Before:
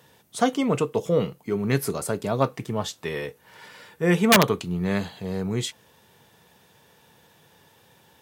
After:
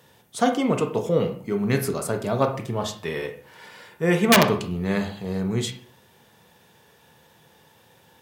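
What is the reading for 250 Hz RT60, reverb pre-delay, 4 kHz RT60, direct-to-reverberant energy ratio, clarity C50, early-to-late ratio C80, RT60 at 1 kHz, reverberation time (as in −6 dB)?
0.55 s, 24 ms, 0.35 s, 5.0 dB, 9.5 dB, 14.0 dB, 0.45 s, 0.50 s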